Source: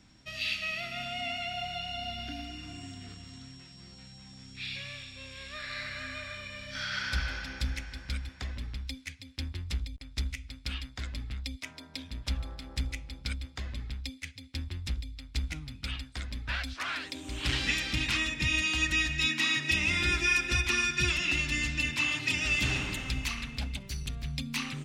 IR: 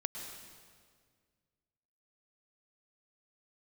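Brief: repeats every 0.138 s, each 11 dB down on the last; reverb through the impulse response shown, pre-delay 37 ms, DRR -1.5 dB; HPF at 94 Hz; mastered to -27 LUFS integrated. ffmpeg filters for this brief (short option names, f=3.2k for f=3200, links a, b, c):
-filter_complex "[0:a]highpass=94,aecho=1:1:138|276|414:0.282|0.0789|0.0221,asplit=2[a][b];[1:a]atrim=start_sample=2205,adelay=37[c];[b][c]afir=irnorm=-1:irlink=0,volume=0.5dB[d];[a][d]amix=inputs=2:normalize=0,volume=1dB"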